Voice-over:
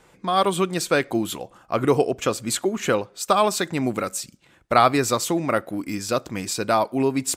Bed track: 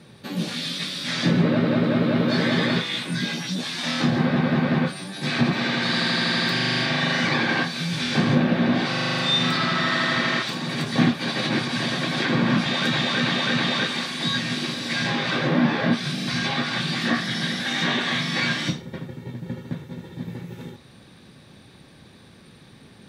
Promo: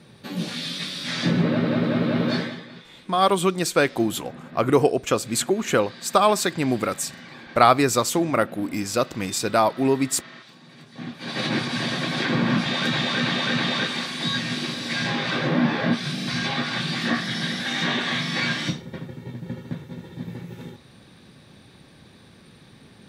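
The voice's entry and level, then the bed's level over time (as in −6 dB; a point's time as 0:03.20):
2.85 s, +1.0 dB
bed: 0:02.35 −1.5 dB
0:02.65 −20.5 dB
0:10.95 −20.5 dB
0:11.40 −1 dB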